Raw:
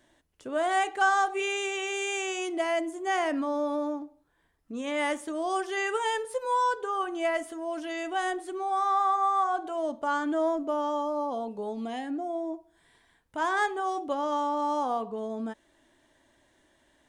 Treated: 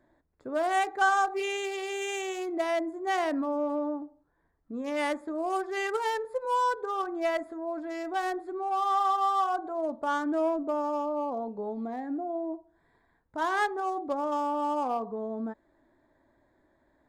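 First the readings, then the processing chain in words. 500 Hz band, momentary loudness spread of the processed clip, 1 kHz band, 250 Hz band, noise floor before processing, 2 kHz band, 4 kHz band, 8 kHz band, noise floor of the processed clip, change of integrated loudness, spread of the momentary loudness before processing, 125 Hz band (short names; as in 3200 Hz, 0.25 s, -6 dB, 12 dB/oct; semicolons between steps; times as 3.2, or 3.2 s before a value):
-0.5 dB, 10 LU, -1.0 dB, 0.0 dB, -67 dBFS, -2.0 dB, -3.0 dB, -4.5 dB, -70 dBFS, -1.0 dB, 10 LU, n/a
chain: Wiener smoothing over 15 samples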